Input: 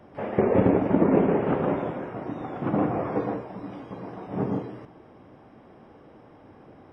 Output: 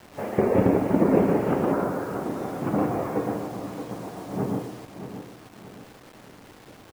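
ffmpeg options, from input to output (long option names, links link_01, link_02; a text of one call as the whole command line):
ffmpeg -i in.wav -filter_complex "[0:a]asettb=1/sr,asplit=3[link_01][link_02][link_03];[link_01]atrim=end=1.724[link_04];[link_02]atrim=start=1.72:end=2.23,asetpts=PTS-STARTPTS,afade=type=in:duration=0.004:curve=qsin,afade=type=out:start_time=0.506:duration=0.004:curve=qsin,highshelf=frequency=2100:width_type=q:width=3:gain=-14[link_05];[link_03]atrim=start=2.226[link_06];[link_04][link_05]acrossfade=duration=0.004:curve1=hsin:curve2=qsin[link_07];[link_07][link_06]acrossfade=duration=0.004:curve1=qsin:curve2=hsin,acrusher=bits=7:mix=0:aa=0.000001,asplit=2[link_08][link_09];[link_09]aecho=0:1:623|1246|1869|2492:0.299|0.122|0.0502|0.0206[link_10];[link_08][link_10]amix=inputs=2:normalize=0" out.wav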